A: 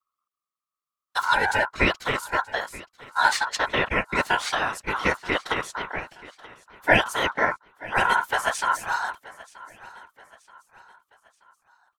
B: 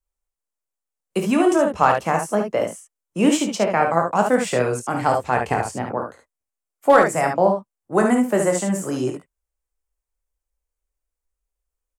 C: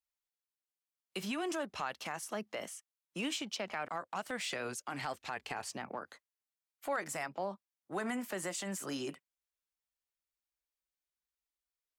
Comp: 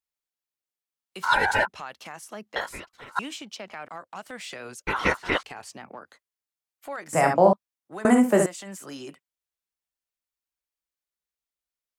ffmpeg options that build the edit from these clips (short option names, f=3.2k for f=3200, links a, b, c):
-filter_complex "[0:a]asplit=3[a][b][c];[1:a]asplit=2[d][e];[2:a]asplit=6[f][g][h][i][j][k];[f]atrim=end=1.24[l];[a]atrim=start=1.22:end=1.68[m];[g]atrim=start=1.66:end=2.562[n];[b]atrim=start=2.558:end=3.192[o];[h]atrim=start=3.188:end=4.872[p];[c]atrim=start=4.868:end=5.432[q];[i]atrim=start=5.428:end=7.132[r];[d]atrim=start=7.128:end=7.532[s];[j]atrim=start=7.528:end=8.052[t];[e]atrim=start=8.048:end=8.462[u];[k]atrim=start=8.458[v];[l][m]acrossfade=d=0.02:c1=tri:c2=tri[w];[w][n]acrossfade=d=0.02:c1=tri:c2=tri[x];[x][o]acrossfade=d=0.004:c1=hsin:c2=hsin[y];[y][p]acrossfade=d=0.004:c1=hsin:c2=hsin[z];[z][q]acrossfade=d=0.004:c1=hsin:c2=hsin[aa];[aa][r]acrossfade=d=0.004:c1=hsin:c2=hsin[ab];[ab][s]acrossfade=d=0.004:c1=hsin:c2=hsin[ac];[ac][t]acrossfade=d=0.004:c1=hsin:c2=hsin[ad];[ad][u]acrossfade=d=0.004:c1=hsin:c2=hsin[ae];[ae][v]acrossfade=d=0.004:c1=hsin:c2=hsin"